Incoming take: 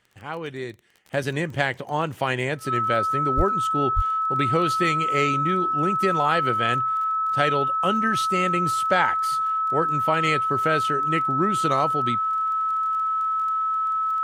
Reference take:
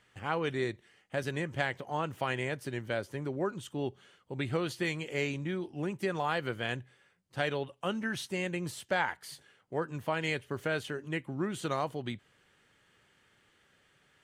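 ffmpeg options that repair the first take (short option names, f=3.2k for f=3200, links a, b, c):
-filter_complex "[0:a]adeclick=t=4,bandreject=f=1.3k:w=30,asplit=3[a][b][c];[a]afade=t=out:st=3.36:d=0.02[d];[b]highpass=f=140:w=0.5412,highpass=f=140:w=1.3066,afade=t=in:st=3.36:d=0.02,afade=t=out:st=3.48:d=0.02[e];[c]afade=t=in:st=3.48:d=0.02[f];[d][e][f]amix=inputs=3:normalize=0,asplit=3[g][h][i];[g]afade=t=out:st=3.95:d=0.02[j];[h]highpass=f=140:w=0.5412,highpass=f=140:w=1.3066,afade=t=in:st=3.95:d=0.02,afade=t=out:st=4.07:d=0.02[k];[i]afade=t=in:st=4.07:d=0.02[l];[j][k][l]amix=inputs=3:normalize=0,asetnsamples=n=441:p=0,asendcmd='1.05 volume volume -8.5dB',volume=0dB"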